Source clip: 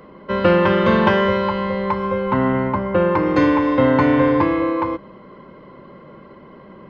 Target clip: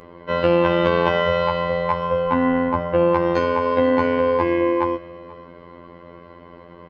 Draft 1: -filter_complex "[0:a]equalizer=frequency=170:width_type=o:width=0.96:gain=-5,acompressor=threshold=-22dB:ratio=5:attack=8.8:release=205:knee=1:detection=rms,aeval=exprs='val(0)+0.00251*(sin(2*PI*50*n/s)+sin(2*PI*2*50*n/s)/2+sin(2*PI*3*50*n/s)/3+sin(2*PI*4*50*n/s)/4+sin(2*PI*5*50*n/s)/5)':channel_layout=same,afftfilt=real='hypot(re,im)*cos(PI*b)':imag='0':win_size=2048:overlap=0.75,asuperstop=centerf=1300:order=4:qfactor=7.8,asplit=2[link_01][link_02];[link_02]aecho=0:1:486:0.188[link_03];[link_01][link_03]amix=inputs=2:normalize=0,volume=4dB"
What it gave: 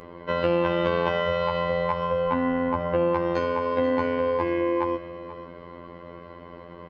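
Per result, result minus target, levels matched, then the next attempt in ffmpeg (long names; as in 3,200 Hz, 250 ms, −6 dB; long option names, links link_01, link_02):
downward compressor: peak gain reduction +6 dB; echo-to-direct +6 dB
-filter_complex "[0:a]equalizer=frequency=170:width_type=o:width=0.96:gain=-5,acompressor=threshold=-14.5dB:ratio=5:attack=8.8:release=205:knee=1:detection=rms,aeval=exprs='val(0)+0.00251*(sin(2*PI*50*n/s)+sin(2*PI*2*50*n/s)/2+sin(2*PI*3*50*n/s)/3+sin(2*PI*4*50*n/s)/4+sin(2*PI*5*50*n/s)/5)':channel_layout=same,afftfilt=real='hypot(re,im)*cos(PI*b)':imag='0':win_size=2048:overlap=0.75,asuperstop=centerf=1300:order=4:qfactor=7.8,asplit=2[link_01][link_02];[link_02]aecho=0:1:486:0.188[link_03];[link_01][link_03]amix=inputs=2:normalize=0,volume=4dB"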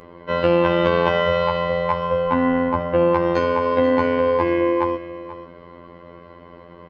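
echo-to-direct +6 dB
-filter_complex "[0:a]equalizer=frequency=170:width_type=o:width=0.96:gain=-5,acompressor=threshold=-14.5dB:ratio=5:attack=8.8:release=205:knee=1:detection=rms,aeval=exprs='val(0)+0.00251*(sin(2*PI*50*n/s)+sin(2*PI*2*50*n/s)/2+sin(2*PI*3*50*n/s)/3+sin(2*PI*4*50*n/s)/4+sin(2*PI*5*50*n/s)/5)':channel_layout=same,afftfilt=real='hypot(re,im)*cos(PI*b)':imag='0':win_size=2048:overlap=0.75,asuperstop=centerf=1300:order=4:qfactor=7.8,asplit=2[link_01][link_02];[link_02]aecho=0:1:486:0.0944[link_03];[link_01][link_03]amix=inputs=2:normalize=0,volume=4dB"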